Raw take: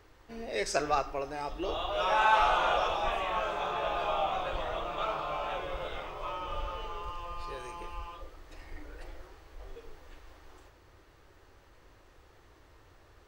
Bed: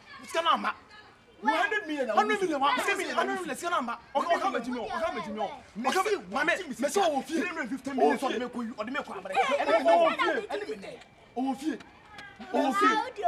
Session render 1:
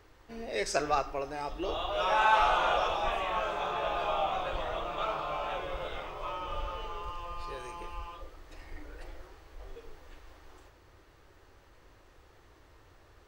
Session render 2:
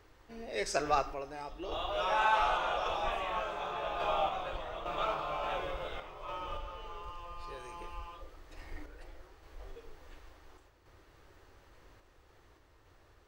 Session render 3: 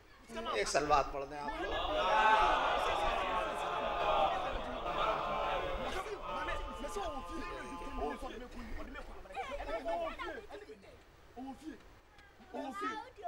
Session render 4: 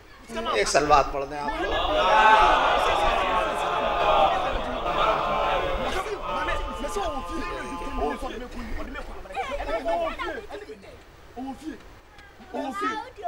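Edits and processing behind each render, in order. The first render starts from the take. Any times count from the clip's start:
nothing audible
random-step tremolo
add bed -16 dB
gain +11.5 dB

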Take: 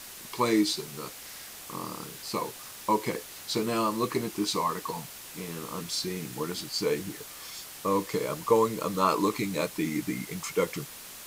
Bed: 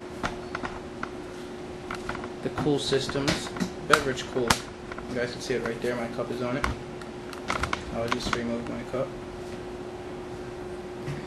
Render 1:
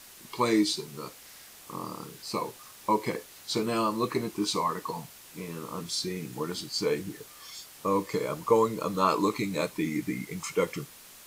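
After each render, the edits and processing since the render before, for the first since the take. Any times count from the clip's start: noise print and reduce 6 dB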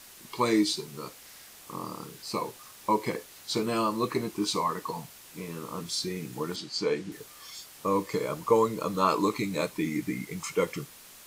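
6.56–7.12 BPF 150–6300 Hz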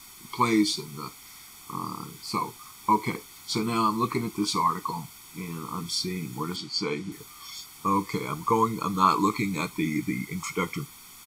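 comb 0.9 ms, depth 86%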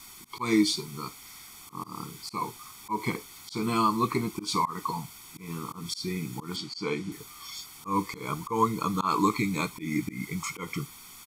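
auto swell 0.144 s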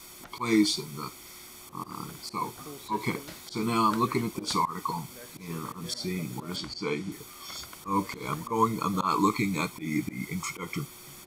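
add bed -19.5 dB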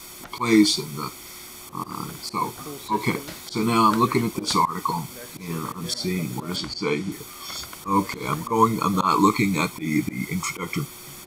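gain +6.5 dB

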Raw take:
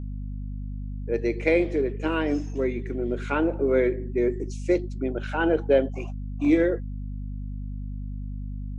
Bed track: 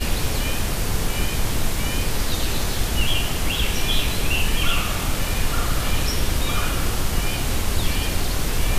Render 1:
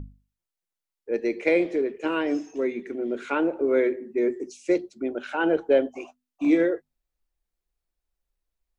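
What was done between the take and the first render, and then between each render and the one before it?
notches 50/100/150/200/250 Hz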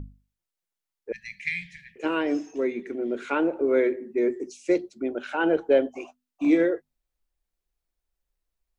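1.12–1.96 brick-wall FIR band-stop 190–1600 Hz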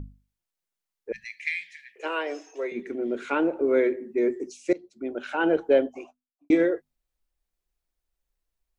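1.24–2.72 HPF 450 Hz 24 dB/oct; 4.73–5.25 fade in, from -21.5 dB; 5.75–6.5 studio fade out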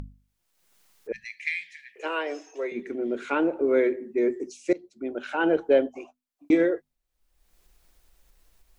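upward compressor, threshold -41 dBFS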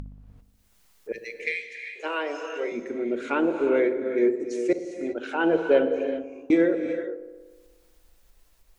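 dark delay 60 ms, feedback 75%, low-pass 880 Hz, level -11.5 dB; non-linear reverb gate 0.42 s rising, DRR 7 dB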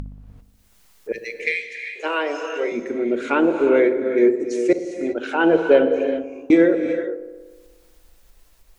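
gain +6 dB; limiter -3 dBFS, peak gain reduction 1.5 dB

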